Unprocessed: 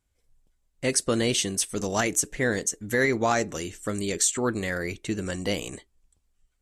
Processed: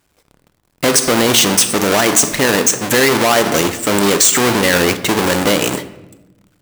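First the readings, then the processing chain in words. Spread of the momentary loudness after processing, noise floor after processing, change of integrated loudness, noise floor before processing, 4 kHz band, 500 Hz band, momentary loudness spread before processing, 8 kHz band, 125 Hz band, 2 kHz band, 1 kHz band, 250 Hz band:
6 LU, -62 dBFS, +13.5 dB, -72 dBFS, +16.5 dB, +12.5 dB, 9 LU, +13.0 dB, +9.5 dB, +13.0 dB, +14.5 dB, +12.5 dB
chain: half-waves squared off; HPF 370 Hz 6 dB/oct; shoebox room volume 420 m³, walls mixed, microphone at 0.34 m; maximiser +18 dB; gain -1 dB

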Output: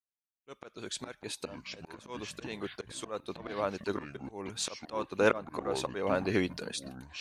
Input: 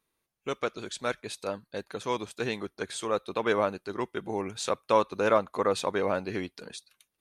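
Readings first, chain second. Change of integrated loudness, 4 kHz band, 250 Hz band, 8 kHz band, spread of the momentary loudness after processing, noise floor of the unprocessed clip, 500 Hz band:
-5.0 dB, -1.5 dB, -2.0 dB, -0.5 dB, 15 LU, -82 dBFS, -5.5 dB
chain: expander -53 dBFS; auto swell 0.499 s; echoes that change speed 0.289 s, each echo -7 st, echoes 2, each echo -6 dB; gain +4.5 dB

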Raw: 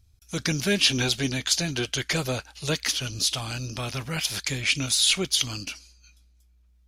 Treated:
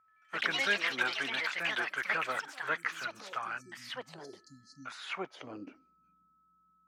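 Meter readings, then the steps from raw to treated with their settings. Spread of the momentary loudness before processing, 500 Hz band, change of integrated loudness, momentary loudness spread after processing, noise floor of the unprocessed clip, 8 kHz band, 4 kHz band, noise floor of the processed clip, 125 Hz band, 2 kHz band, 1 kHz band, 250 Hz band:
12 LU, -10.0 dB, -9.0 dB, 19 LU, -60 dBFS, -24.0 dB, -14.5 dB, -70 dBFS, -26.5 dB, -1.5 dB, +1.0 dB, -17.0 dB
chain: LPF 9600 Hz; band-pass sweep 1300 Hz -> 200 Hz, 5.03–5.94; HPF 150 Hz 12 dB/oct; resonant high shelf 2700 Hz -10 dB, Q 1.5; spectral delete 3.61–4.86, 280–4000 Hz; whine 1300 Hz -70 dBFS; echoes that change speed 82 ms, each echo +5 st, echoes 3; gain +3 dB

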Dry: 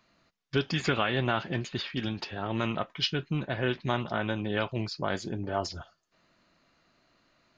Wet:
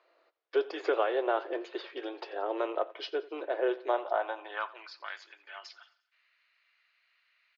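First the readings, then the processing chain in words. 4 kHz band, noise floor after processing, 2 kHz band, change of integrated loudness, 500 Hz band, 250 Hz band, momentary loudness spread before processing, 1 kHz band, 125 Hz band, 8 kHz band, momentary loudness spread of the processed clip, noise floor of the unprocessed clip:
-11.0 dB, -75 dBFS, -6.0 dB, -2.5 dB, +2.5 dB, -9.0 dB, 6 LU, -0.5 dB, under -40 dB, n/a, 16 LU, -73 dBFS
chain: high-pass sweep 470 Hz -> 2200 Hz, 3.86–5.2; dynamic EQ 2500 Hz, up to -8 dB, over -43 dBFS, Q 0.86; elliptic high-pass 320 Hz, stop band 40 dB; air absorption 220 m; feedback echo 88 ms, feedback 51%, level -20 dB

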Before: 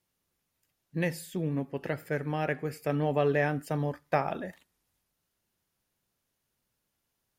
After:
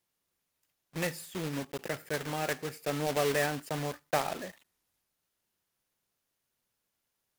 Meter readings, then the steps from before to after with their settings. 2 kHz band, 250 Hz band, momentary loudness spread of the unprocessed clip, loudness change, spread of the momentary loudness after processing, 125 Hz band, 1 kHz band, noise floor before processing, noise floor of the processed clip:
-0.5 dB, -5.0 dB, 9 LU, -2.5 dB, 9 LU, -7.0 dB, -1.5 dB, -81 dBFS, -83 dBFS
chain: block floating point 3-bit; low shelf 260 Hz -7 dB; gain -1.5 dB

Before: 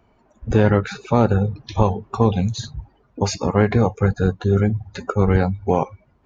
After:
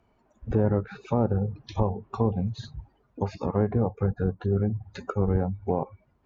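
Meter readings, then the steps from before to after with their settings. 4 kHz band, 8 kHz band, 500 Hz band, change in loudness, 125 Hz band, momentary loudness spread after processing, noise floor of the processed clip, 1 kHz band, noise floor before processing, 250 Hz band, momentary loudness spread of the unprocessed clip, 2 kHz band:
-14.5 dB, n/a, -8.0 dB, -8.0 dB, -7.5 dB, 9 LU, -67 dBFS, -10.0 dB, -60 dBFS, -7.5 dB, 9 LU, -15.5 dB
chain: treble ducked by the level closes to 870 Hz, closed at -14.5 dBFS; gain -7.5 dB

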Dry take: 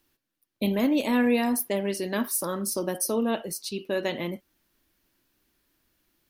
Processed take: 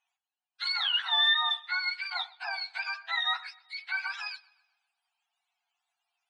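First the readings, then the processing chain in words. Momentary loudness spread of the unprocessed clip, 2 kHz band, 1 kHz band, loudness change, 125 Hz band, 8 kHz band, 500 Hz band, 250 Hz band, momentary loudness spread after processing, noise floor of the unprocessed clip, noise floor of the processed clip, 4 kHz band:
10 LU, +5.5 dB, -1.0 dB, -1.5 dB, under -40 dB, under -25 dB, -27.0 dB, under -40 dB, 14 LU, -83 dBFS, under -85 dBFS, +11.5 dB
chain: spectrum mirrored in octaves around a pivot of 930 Hz; analogue delay 0.126 s, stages 4096, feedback 47%, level -23.5 dB; FFT band-pass 670–11000 Hz

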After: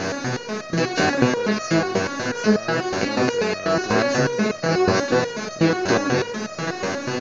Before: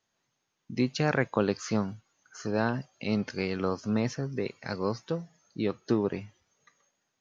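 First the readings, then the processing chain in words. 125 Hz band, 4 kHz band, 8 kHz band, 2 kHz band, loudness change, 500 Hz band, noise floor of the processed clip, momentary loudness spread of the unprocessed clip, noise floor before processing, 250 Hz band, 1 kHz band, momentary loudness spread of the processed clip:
+7.5 dB, +14.5 dB, n/a, +14.0 dB, +9.5 dB, +11.0 dB, -33 dBFS, 10 LU, -80 dBFS, +8.5 dB, +13.0 dB, 7 LU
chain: per-bin compression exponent 0.2; doubler 23 ms -13 dB; in parallel at +2 dB: limiter -12 dBFS, peak gain reduction 9.5 dB; on the sum: stepped resonator 8.2 Hz 95–630 Hz; gain +8.5 dB

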